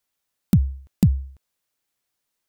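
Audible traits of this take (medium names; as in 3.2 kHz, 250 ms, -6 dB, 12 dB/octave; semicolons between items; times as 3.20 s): noise floor -80 dBFS; spectral tilt -15.0 dB/octave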